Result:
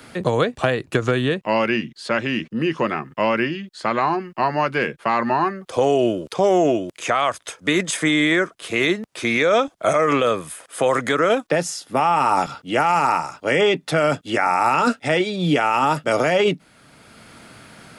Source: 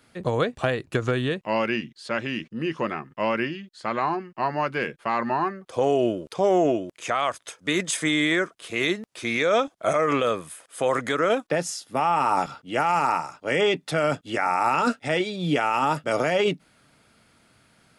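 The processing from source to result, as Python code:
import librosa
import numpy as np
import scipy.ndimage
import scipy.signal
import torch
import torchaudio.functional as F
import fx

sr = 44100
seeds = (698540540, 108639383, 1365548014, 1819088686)

y = fx.band_squash(x, sr, depth_pct=40)
y = F.gain(torch.from_numpy(y), 4.5).numpy()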